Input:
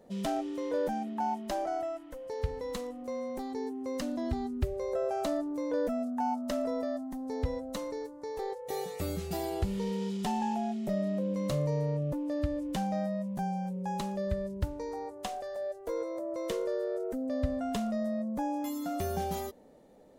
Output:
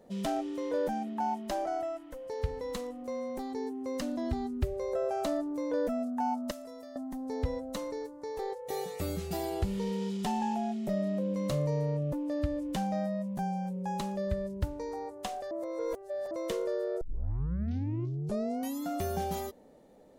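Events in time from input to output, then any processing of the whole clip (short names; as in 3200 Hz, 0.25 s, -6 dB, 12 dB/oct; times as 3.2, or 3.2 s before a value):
6.51–6.96 pre-emphasis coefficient 0.8
15.51–16.31 reverse
17.01 tape start 1.82 s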